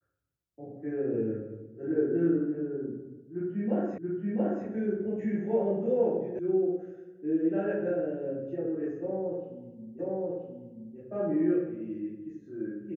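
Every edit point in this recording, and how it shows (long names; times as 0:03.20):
0:03.98: the same again, the last 0.68 s
0:06.39: cut off before it has died away
0:09.99: the same again, the last 0.98 s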